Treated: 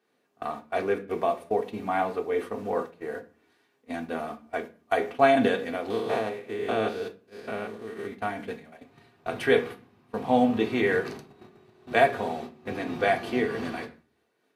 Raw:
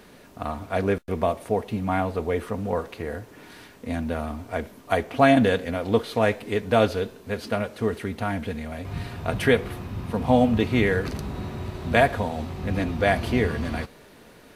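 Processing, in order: 5.9–8.14 stepped spectrum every 0.2 s; HPF 220 Hz 12 dB/oct; high shelf 5800 Hz -5 dB; notches 60/120/180/240/300/360/420/480 Hz; gate -34 dBFS, range -19 dB; reverb RT60 0.40 s, pre-delay 3 ms, DRR 4 dB; noise-modulated level, depth 55%

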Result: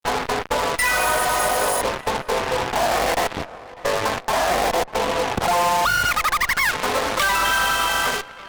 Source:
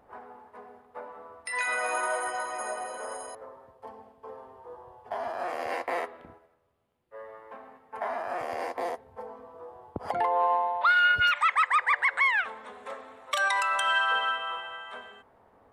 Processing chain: compressor 6:1, threshold -41 dBFS, peak gain reduction 19.5 dB; fuzz box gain 47 dB, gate -52 dBFS; granular stretch 0.54×, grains 40 ms; on a send: tape echo 0.597 s, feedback 69%, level -18 dB, low-pass 3500 Hz; on the sum: added harmonics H 8 -13 dB, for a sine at -10.5 dBFS; gain -2.5 dB

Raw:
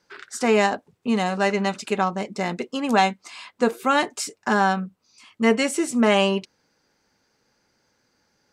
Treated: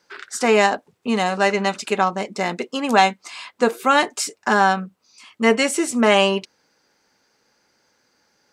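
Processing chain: low shelf 190 Hz -10.5 dB; gain +4.5 dB

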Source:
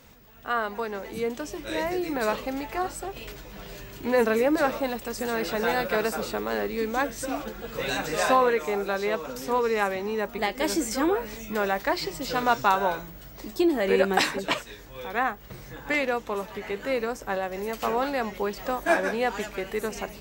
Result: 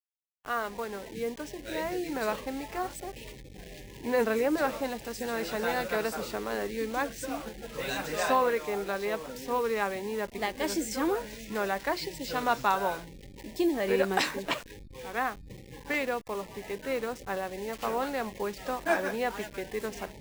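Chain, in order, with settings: level-crossing sampler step -36 dBFS; spectral noise reduction 26 dB; gain -4.5 dB

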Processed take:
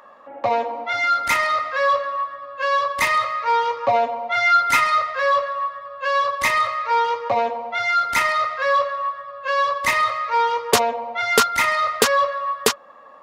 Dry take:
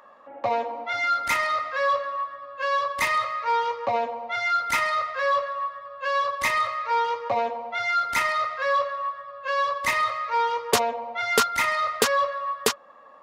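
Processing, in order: 3.76–4.98 comb 7.2 ms, depth 55%; gain +4.5 dB

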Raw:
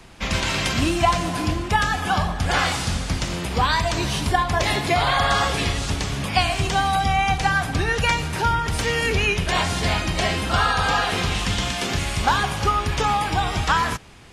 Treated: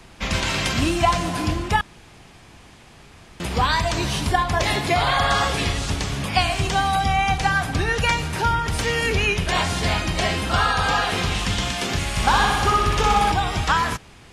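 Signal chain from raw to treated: 1.81–3.4 room tone; 12.09–13.32 flutter echo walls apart 10.7 m, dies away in 1.2 s

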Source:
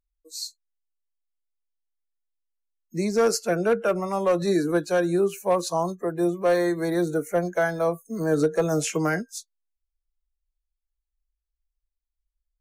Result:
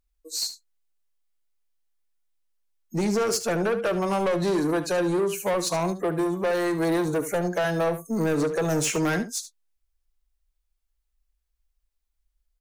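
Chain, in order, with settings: compressor, threshold -22 dBFS, peak gain reduction 6 dB; soft clip -27.5 dBFS, distortion -10 dB; on a send: echo 73 ms -12.5 dB; on the sum: gain +7 dB

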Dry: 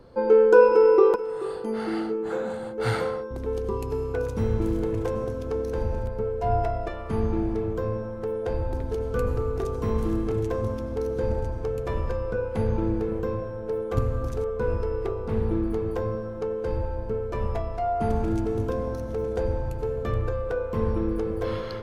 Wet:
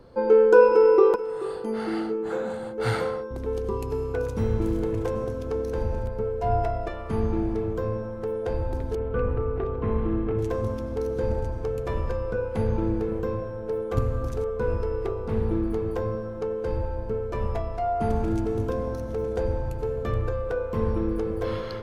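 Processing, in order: 8.95–10.39 LPF 2800 Hz 24 dB/oct

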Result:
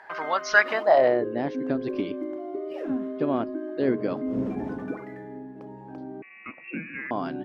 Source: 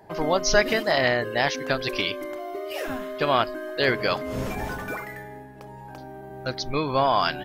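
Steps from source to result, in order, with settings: 6.22–7.11 inverted band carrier 2700 Hz; band-pass sweep 1500 Hz -> 270 Hz, 0.58–1.33; mismatched tape noise reduction encoder only; gain +7.5 dB

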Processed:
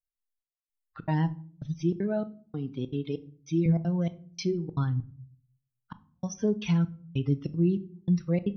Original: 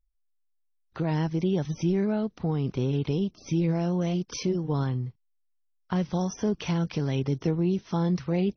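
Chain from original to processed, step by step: per-bin expansion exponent 2; 1.79–3.66 HPF 210 Hz 12 dB/oct; step gate "x.xxx....xxx" 195 bpm -60 dB; shoebox room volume 440 m³, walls furnished, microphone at 0.52 m; gain +3 dB

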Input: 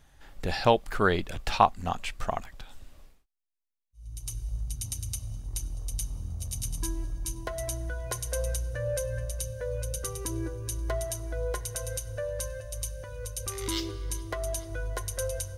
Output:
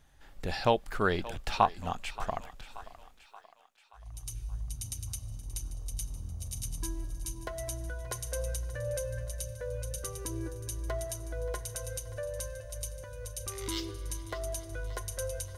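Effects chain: reverse; upward compressor, threshold -52 dBFS; reverse; thinning echo 0.578 s, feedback 57%, high-pass 440 Hz, level -16 dB; gain -4 dB

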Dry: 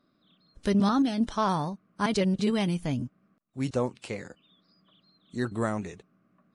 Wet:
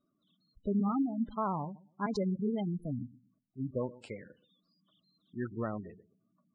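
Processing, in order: darkening echo 0.124 s, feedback 22%, low-pass 1800 Hz, level -17 dB; in parallel at -11 dB: sample gate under -29.5 dBFS; on the sum: vibrato 2.9 Hz 20 cents; spectral gate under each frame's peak -15 dB strong; gain -8.5 dB

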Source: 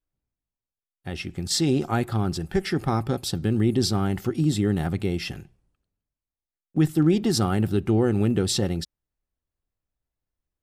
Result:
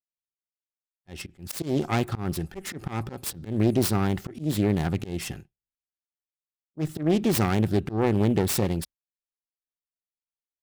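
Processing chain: self-modulated delay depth 0.39 ms; expander -32 dBFS; auto swell 0.16 s

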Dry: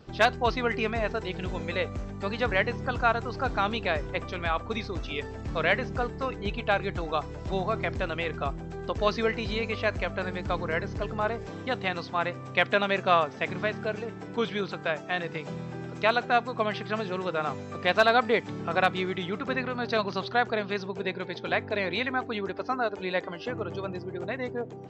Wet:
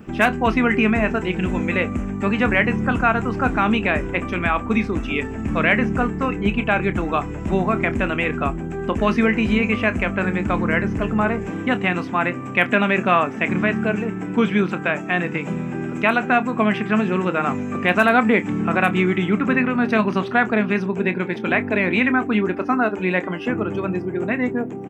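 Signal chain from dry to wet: EQ curve 140 Hz 0 dB, 210 Hz +11 dB, 350 Hz +5 dB, 490 Hz -2 dB, 2600 Hz +5 dB, 4300 Hz -16 dB, 9100 Hz +10 dB; in parallel at +1.5 dB: limiter -15 dBFS, peak gain reduction 10 dB; on the sum: doubler 28 ms -13 dB

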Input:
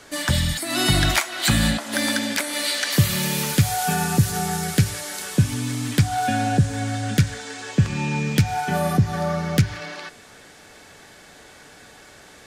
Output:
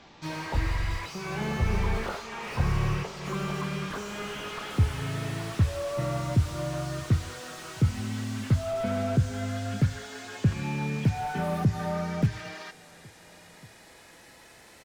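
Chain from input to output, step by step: speed glide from 52% -> 116%; outdoor echo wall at 240 m, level -28 dB; slew limiter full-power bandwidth 63 Hz; gain -6 dB

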